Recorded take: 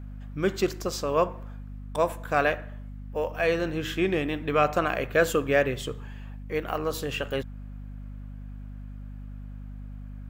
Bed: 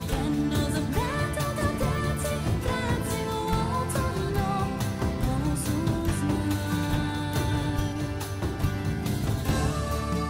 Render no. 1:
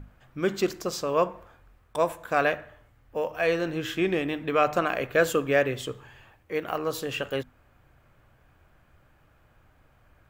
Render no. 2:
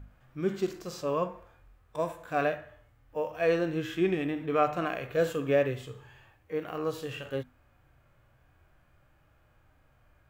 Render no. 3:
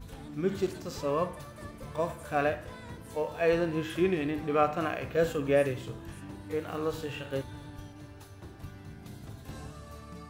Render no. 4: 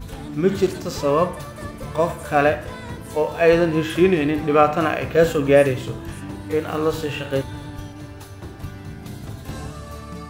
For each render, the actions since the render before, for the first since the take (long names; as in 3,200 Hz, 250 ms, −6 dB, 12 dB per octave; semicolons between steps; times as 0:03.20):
mains-hum notches 50/100/150/200/250 Hz
harmonic and percussive parts rebalanced percussive −16 dB
mix in bed −17.5 dB
level +11 dB; brickwall limiter −3 dBFS, peak gain reduction 1.5 dB